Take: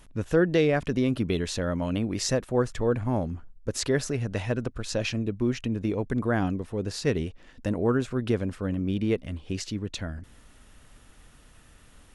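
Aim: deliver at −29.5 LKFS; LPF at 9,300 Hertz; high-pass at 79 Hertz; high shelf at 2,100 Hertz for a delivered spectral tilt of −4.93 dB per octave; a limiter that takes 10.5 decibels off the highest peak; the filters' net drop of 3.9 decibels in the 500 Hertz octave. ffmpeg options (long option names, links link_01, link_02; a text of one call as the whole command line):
ffmpeg -i in.wav -af "highpass=79,lowpass=9300,equalizer=frequency=500:width_type=o:gain=-5,highshelf=frequency=2100:gain=5,volume=1dB,alimiter=limit=-17.5dB:level=0:latency=1" out.wav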